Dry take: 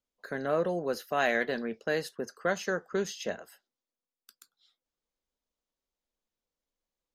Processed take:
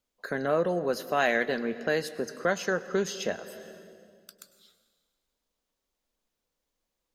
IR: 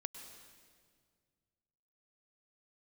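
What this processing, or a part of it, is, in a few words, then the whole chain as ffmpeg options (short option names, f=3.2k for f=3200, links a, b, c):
ducked reverb: -filter_complex "[0:a]asplit=3[a][b][c];[1:a]atrim=start_sample=2205[d];[b][d]afir=irnorm=-1:irlink=0[e];[c]apad=whole_len=315221[f];[e][f]sidechaincompress=threshold=-38dB:ratio=3:attack=12:release=455,volume=5dB[g];[a][g]amix=inputs=2:normalize=0"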